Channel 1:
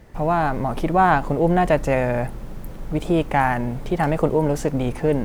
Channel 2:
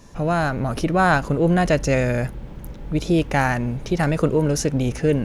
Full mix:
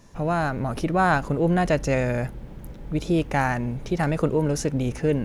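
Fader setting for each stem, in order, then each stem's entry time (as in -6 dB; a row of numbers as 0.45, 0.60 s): -14.5, -5.5 dB; 0.00, 0.00 s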